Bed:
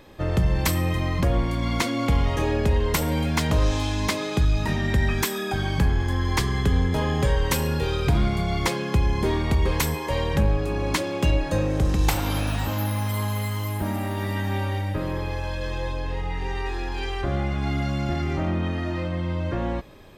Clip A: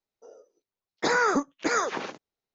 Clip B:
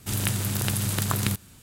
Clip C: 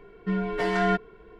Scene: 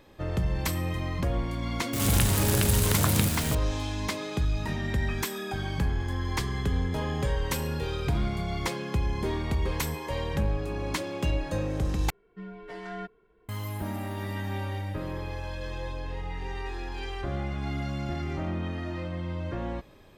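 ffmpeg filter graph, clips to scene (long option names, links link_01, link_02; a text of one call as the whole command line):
ffmpeg -i bed.wav -i cue0.wav -i cue1.wav -i cue2.wav -filter_complex "[0:a]volume=-6.5dB[link_01];[2:a]aeval=exprs='val(0)+0.5*0.0596*sgn(val(0))':channel_layout=same[link_02];[link_01]asplit=2[link_03][link_04];[link_03]atrim=end=12.104[link_05];[3:a]atrim=end=1.39,asetpts=PTS-STARTPTS,volume=-14.5dB[link_06];[link_04]atrim=start=13.486[link_07];[link_02]atrim=end=1.62,asetpts=PTS-STARTPTS,volume=-2dB,afade=type=in:duration=0.004:curve=hsin,afade=type=out:start_time=1.616:duration=0.004:curve=hsin,adelay=1930[link_08];[link_05][link_06]acrossfade=duration=0.004:curve1=hsin:curve2=hsin[link_09];[link_09][link_07]acrossfade=duration=0.004:curve1=hsin:curve2=hsin[link_10];[link_10][link_08]amix=inputs=2:normalize=0" out.wav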